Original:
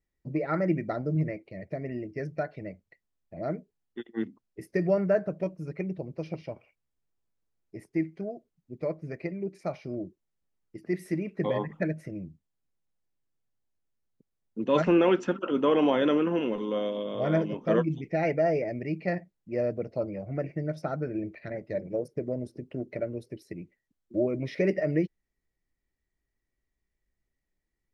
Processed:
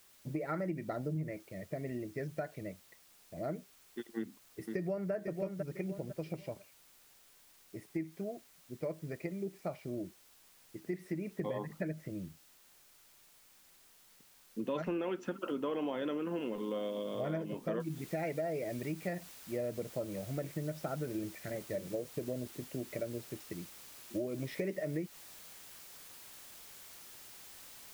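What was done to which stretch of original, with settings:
4.17–5.12 echo throw 0.5 s, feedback 25%, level -7.5 dB
9.26–14.65 LPF 3900 Hz 6 dB/oct
17.8 noise floor step -59 dB -49 dB
whole clip: compressor, threshold -29 dBFS; gain -4 dB

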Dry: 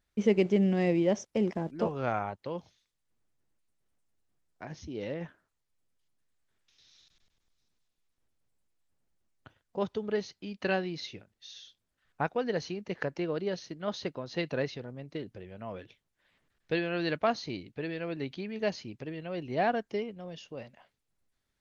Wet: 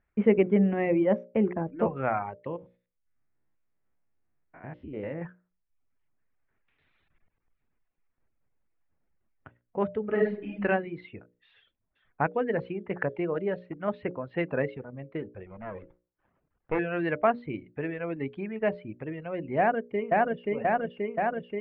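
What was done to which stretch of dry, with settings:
2.47–5.22 stepped spectrum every 0.1 s
10.04–10.62 reverb throw, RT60 0.8 s, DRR -2.5 dB
11.57–12.21 echo throw 0.38 s, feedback 65%, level -11.5 dB
15.46–16.79 running maximum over 17 samples
19.58–20.51 echo throw 0.53 s, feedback 80%, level 0 dB
whole clip: steep low-pass 2400 Hz 36 dB/oct; reverb removal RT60 0.68 s; notches 60/120/180/240/300/360/420/480/540/600 Hz; gain +4.5 dB

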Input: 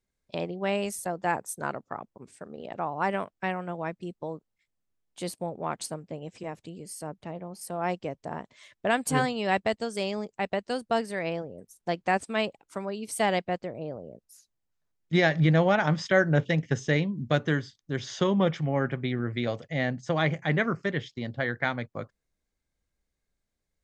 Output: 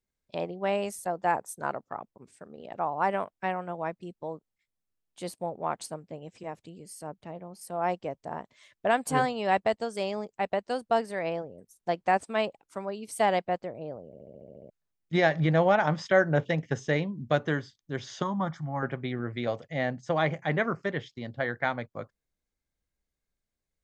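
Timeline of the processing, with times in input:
14.07 stutter in place 0.07 s, 9 plays
18.22–18.83 fixed phaser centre 1100 Hz, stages 4
whole clip: dynamic EQ 780 Hz, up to +7 dB, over -39 dBFS, Q 0.74; gain -4.5 dB

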